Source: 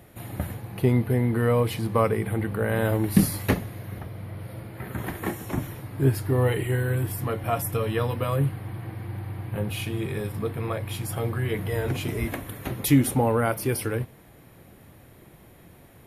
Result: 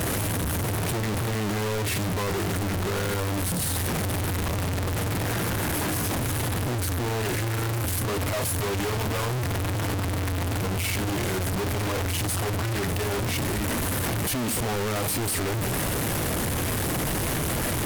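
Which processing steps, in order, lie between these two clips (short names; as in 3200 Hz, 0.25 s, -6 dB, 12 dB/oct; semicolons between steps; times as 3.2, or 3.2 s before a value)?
infinite clipping; wide varispeed 0.9×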